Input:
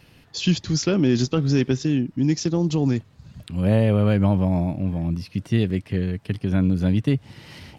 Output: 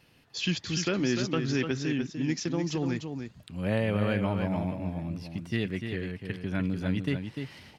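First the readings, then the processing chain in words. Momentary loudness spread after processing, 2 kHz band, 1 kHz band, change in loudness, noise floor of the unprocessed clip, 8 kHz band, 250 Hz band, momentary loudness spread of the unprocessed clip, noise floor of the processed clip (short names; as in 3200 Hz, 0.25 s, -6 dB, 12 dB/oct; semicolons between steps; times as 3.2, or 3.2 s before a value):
9 LU, 0.0 dB, -4.0 dB, -8.5 dB, -54 dBFS, n/a, -8.5 dB, 8 LU, -60 dBFS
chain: low shelf 130 Hz -8 dB; echo 0.297 s -6.5 dB; dynamic EQ 1900 Hz, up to +8 dB, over -45 dBFS, Q 0.98; gain -7.5 dB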